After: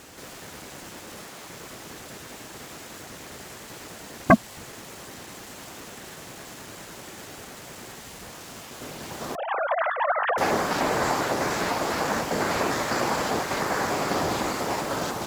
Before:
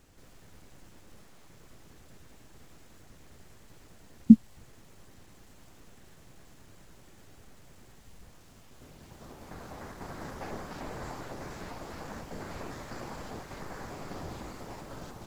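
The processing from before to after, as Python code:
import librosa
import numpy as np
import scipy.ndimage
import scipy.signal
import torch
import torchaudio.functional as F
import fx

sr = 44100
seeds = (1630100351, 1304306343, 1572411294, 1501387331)

y = fx.sine_speech(x, sr, at=(9.35, 10.38))
y = fx.highpass(y, sr, hz=380.0, slope=6)
y = fx.fold_sine(y, sr, drive_db=15, ceiling_db=-8.5)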